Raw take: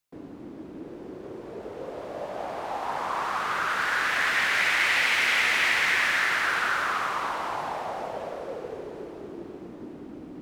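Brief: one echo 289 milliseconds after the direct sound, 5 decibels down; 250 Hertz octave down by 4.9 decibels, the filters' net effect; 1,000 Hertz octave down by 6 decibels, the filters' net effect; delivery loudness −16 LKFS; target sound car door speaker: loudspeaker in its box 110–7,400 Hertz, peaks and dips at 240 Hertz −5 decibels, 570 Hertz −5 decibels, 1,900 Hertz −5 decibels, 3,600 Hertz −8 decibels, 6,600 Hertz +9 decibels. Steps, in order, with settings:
loudspeaker in its box 110–7,400 Hz, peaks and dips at 240 Hz −5 dB, 570 Hz −5 dB, 1,900 Hz −5 dB, 3,600 Hz −8 dB, 6,600 Hz +9 dB
parametric band 250 Hz −4 dB
parametric band 1,000 Hz −7 dB
single-tap delay 289 ms −5 dB
level +12 dB

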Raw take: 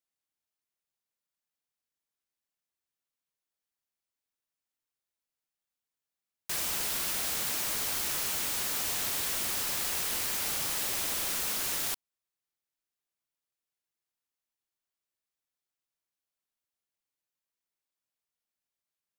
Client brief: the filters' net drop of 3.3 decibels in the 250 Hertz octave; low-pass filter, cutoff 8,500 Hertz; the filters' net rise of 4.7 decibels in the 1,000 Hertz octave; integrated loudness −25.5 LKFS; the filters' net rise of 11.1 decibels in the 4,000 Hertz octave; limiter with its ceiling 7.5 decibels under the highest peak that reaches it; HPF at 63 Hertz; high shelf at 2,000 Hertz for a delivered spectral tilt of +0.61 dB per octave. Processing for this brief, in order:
high-pass filter 63 Hz
low-pass filter 8,500 Hz
parametric band 250 Hz −5 dB
parametric band 1,000 Hz +3.5 dB
high-shelf EQ 2,000 Hz +8.5 dB
parametric band 4,000 Hz +5.5 dB
level +2.5 dB
brickwall limiter −18.5 dBFS

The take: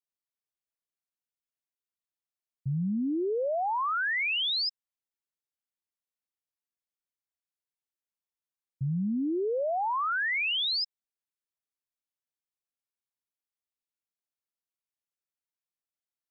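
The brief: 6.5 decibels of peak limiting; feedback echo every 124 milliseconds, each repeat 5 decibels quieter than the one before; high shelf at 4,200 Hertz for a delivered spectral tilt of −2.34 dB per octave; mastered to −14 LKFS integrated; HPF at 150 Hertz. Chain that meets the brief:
high-pass filter 150 Hz
high-shelf EQ 4,200 Hz +5.5 dB
brickwall limiter −29 dBFS
repeating echo 124 ms, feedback 56%, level −5 dB
level +16.5 dB

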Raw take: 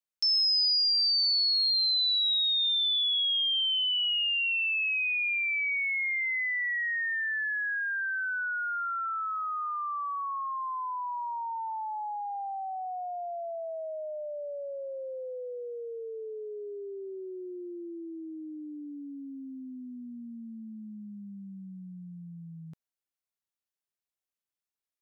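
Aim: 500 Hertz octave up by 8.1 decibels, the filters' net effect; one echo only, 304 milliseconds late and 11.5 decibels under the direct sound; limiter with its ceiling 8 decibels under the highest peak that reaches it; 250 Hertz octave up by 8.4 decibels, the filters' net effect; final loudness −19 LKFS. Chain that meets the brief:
parametric band 250 Hz +8 dB
parametric band 500 Hz +8 dB
brickwall limiter −29 dBFS
single-tap delay 304 ms −11.5 dB
level +12 dB

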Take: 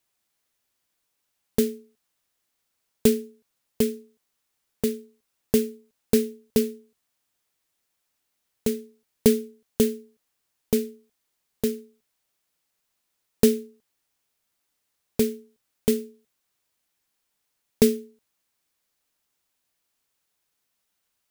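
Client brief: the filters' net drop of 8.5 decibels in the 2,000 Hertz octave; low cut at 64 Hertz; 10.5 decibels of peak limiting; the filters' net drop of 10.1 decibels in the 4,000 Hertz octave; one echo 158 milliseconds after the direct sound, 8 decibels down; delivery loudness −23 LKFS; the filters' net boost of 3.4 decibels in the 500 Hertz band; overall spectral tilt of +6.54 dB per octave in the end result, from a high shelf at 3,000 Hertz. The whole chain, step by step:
high-pass filter 64 Hz
parametric band 500 Hz +4.5 dB
parametric band 2,000 Hz −6 dB
high-shelf EQ 3,000 Hz −9 dB
parametric band 4,000 Hz −4 dB
brickwall limiter −13 dBFS
single-tap delay 158 ms −8 dB
level +5.5 dB

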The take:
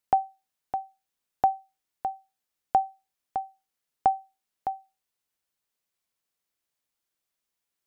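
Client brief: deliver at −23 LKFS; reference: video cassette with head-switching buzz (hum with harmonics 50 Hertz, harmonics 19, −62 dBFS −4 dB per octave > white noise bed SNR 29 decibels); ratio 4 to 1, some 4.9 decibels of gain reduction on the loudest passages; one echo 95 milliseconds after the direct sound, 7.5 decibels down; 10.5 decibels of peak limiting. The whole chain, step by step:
downward compressor 4 to 1, threshold −22 dBFS
brickwall limiter −21.5 dBFS
single-tap delay 95 ms −7.5 dB
hum with harmonics 50 Hz, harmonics 19, −62 dBFS −4 dB per octave
white noise bed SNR 29 dB
level +15 dB

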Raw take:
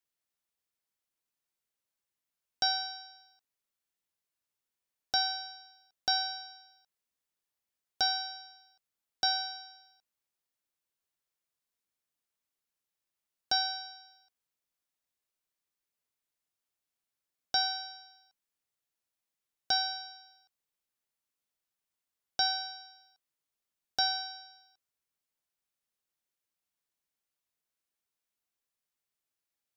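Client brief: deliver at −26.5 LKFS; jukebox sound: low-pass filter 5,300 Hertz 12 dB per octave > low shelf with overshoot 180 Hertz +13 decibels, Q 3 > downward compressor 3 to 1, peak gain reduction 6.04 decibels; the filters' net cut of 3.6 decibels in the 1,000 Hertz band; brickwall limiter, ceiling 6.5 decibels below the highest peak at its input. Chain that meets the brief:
parametric band 1,000 Hz −4.5 dB
brickwall limiter −22.5 dBFS
low-pass filter 5,300 Hz 12 dB per octave
low shelf with overshoot 180 Hz +13 dB, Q 3
downward compressor 3 to 1, threshold −38 dBFS
level +15 dB

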